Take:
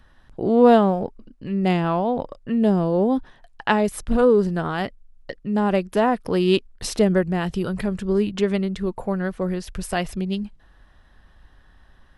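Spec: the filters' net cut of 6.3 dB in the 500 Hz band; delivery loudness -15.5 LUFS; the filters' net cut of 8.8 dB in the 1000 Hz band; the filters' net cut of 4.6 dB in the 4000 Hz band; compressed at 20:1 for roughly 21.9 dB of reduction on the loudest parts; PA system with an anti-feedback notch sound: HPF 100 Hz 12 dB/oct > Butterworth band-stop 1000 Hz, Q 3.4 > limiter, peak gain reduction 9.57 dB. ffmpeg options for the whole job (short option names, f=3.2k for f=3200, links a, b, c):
-af "equalizer=f=500:t=o:g=-6,equalizer=f=1k:t=o:g=-8,equalizer=f=4k:t=o:g=-6,acompressor=threshold=-35dB:ratio=20,highpass=100,asuperstop=centerf=1000:order=8:qfactor=3.4,volume=26dB,alimiter=limit=-6dB:level=0:latency=1"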